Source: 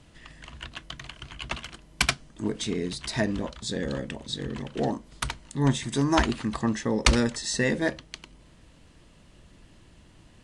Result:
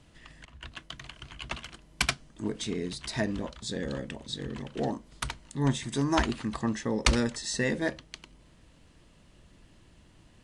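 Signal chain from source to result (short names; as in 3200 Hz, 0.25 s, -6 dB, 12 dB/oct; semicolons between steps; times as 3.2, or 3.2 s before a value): 0.45–0.98 three-band expander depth 100%; gain -3.5 dB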